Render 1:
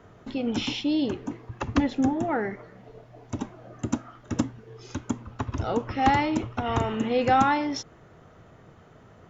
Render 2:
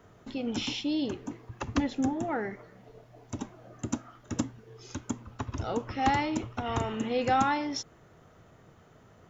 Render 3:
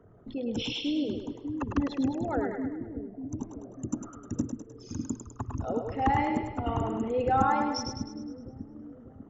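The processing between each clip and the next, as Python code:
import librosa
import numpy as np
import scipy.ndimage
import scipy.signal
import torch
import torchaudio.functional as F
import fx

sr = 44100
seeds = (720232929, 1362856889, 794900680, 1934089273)

y1 = fx.high_shelf(x, sr, hz=6700.0, db=11.5)
y1 = F.gain(torch.from_numpy(y1), -5.0).numpy()
y2 = fx.envelope_sharpen(y1, sr, power=2.0)
y2 = fx.echo_split(y2, sr, split_hz=360.0, low_ms=596, high_ms=103, feedback_pct=52, wet_db=-5.0)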